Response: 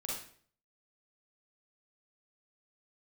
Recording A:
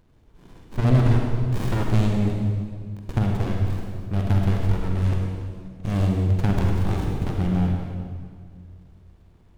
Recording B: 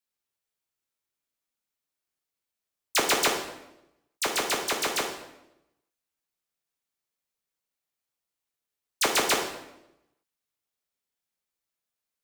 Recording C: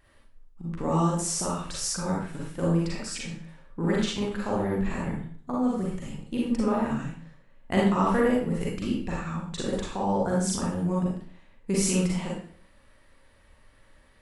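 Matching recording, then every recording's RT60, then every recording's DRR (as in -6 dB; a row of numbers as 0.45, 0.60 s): C; 1.9, 0.90, 0.50 s; 0.0, 1.0, -5.0 dB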